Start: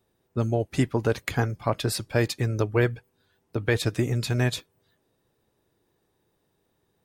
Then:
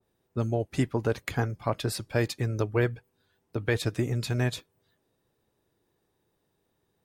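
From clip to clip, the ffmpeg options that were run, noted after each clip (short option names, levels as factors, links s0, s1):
-af "adynamicequalizer=threshold=0.0126:dfrequency=1800:dqfactor=0.7:tfrequency=1800:tqfactor=0.7:attack=5:release=100:ratio=0.375:range=2:mode=cutabove:tftype=highshelf,volume=0.708"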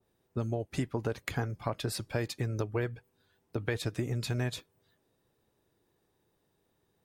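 -af "acompressor=threshold=0.0316:ratio=3"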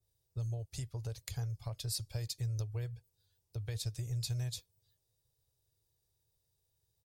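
-af "firequalizer=gain_entry='entry(110,0);entry(220,-26);entry(490,-14);entry(1400,-20);entry(4600,1)':delay=0.05:min_phase=1"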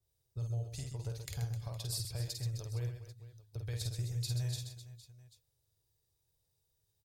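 -af "aecho=1:1:50|130|258|462.8|790.5:0.631|0.398|0.251|0.158|0.1,volume=0.794"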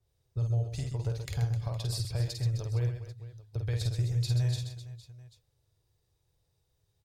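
-af "lowpass=f=2800:p=1,volume=2.51"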